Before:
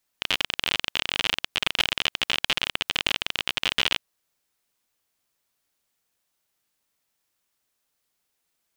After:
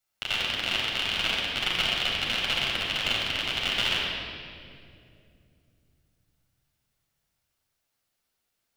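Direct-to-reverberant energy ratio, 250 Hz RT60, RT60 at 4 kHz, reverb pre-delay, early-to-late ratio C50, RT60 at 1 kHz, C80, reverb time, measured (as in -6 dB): -4.0 dB, 3.7 s, 1.7 s, 9 ms, -1.0 dB, 2.0 s, 0.5 dB, 2.5 s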